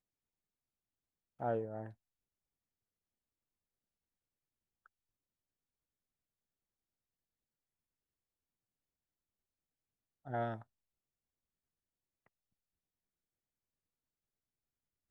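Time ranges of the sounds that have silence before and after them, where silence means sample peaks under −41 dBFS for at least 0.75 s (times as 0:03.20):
0:01.40–0:01.87
0:10.27–0:10.56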